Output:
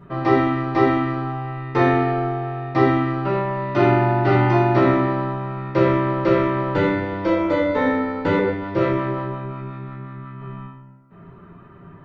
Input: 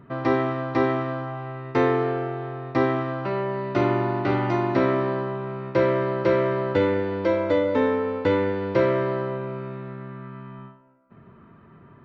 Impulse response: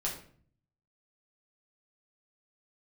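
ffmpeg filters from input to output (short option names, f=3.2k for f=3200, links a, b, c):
-filter_complex "[0:a]asettb=1/sr,asplit=3[a][b][c];[a]atrim=end=8.394[d];[b]atrim=start=8.39:end=10.42,asetpts=PTS-STARTPTS,afade=t=in:d=0.004:c=qsin,afade=t=out:st=2.026:d=0.004:c=qsin,acrossover=split=500[e][f];[e]aeval=exprs='val(0)*(1-0.5/2+0.5/2*cos(2*PI*5.6*n/s))':c=same[g];[f]aeval=exprs='val(0)*(1-0.5/2-0.5/2*cos(2*PI*5.6*n/s))':c=same[h];[g][h]amix=inputs=2:normalize=0[i];[c]atrim=start=10.416[j];[d][i]acrossfade=d=0.004:c1=hsin:c2=qsin[k];[k][j]acrossfade=d=0.004:c1=qsin:c2=hsin[l];[1:a]atrim=start_sample=2205[m];[l][m]afir=irnorm=-1:irlink=0,volume=1.5dB"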